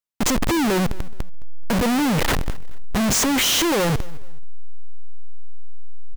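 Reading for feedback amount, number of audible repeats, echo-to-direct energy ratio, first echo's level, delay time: 31%, 2, -20.5 dB, -21.0 dB, 0.215 s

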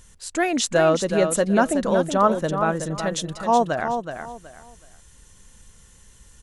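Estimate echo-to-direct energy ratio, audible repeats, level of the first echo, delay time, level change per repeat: -7.0 dB, 3, -7.5 dB, 0.373 s, -12.0 dB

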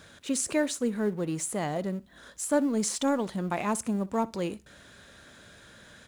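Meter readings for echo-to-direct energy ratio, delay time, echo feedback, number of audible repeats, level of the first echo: -21.5 dB, 62 ms, 22%, 2, -21.5 dB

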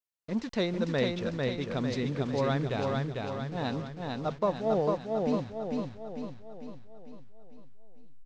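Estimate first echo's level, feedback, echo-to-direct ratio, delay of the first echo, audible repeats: -3.0 dB, 52%, -1.5 dB, 0.449 s, 6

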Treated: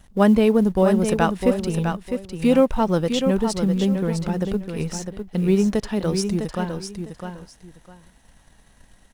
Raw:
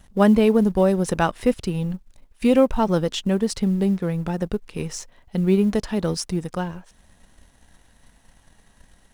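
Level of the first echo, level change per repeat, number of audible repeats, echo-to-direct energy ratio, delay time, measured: -7.0 dB, -13.0 dB, 2, -7.0 dB, 0.655 s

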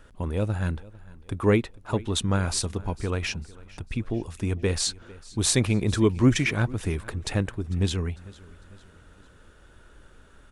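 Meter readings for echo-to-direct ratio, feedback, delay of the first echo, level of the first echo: -20.5 dB, 48%, 0.45 s, -21.5 dB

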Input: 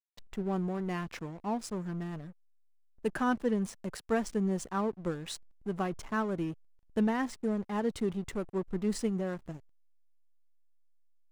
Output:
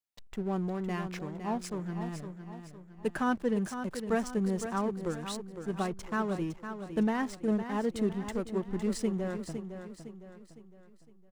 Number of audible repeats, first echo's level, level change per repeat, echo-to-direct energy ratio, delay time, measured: 4, -9.0 dB, -7.5 dB, -8.0 dB, 0.509 s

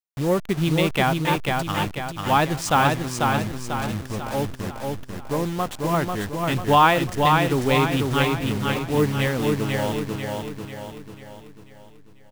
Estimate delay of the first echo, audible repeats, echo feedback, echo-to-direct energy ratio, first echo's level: 0.493 s, 5, 48%, -2.5 dB, -3.5 dB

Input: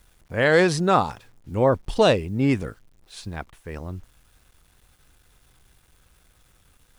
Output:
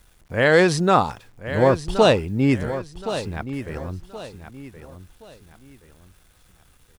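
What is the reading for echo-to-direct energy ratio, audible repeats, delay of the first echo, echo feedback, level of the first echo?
-11.0 dB, 3, 1.073 s, 33%, -11.5 dB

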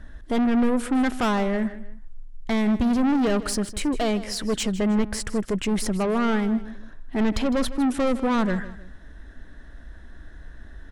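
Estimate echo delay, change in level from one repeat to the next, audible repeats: 0.157 s, -9.0 dB, 2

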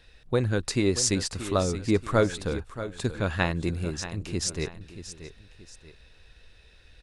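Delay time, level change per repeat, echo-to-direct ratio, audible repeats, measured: 0.63 s, -8.5 dB, -12.0 dB, 2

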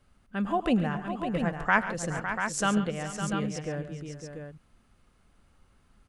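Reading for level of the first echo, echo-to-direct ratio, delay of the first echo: -17.0 dB, -4.0 dB, 0.103 s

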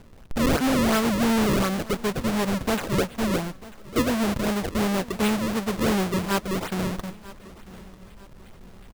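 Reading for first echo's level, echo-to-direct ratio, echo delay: -19.5 dB, -19.0 dB, 0.943 s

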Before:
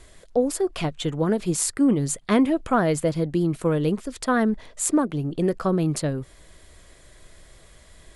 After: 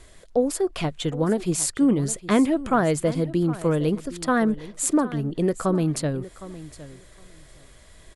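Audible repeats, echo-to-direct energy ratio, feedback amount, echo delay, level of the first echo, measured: 2, -16.5 dB, 16%, 0.762 s, -16.5 dB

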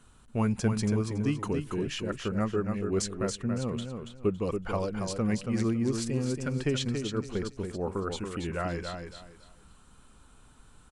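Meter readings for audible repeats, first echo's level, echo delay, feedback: 3, -6.0 dB, 0.28 s, 25%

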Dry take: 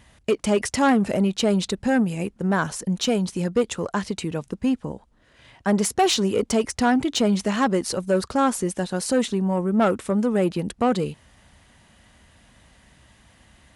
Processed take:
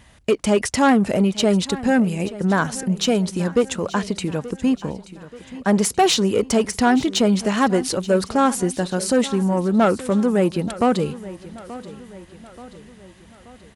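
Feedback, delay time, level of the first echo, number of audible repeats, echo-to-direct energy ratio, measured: 51%, 0.88 s, -17.0 dB, 4, -15.5 dB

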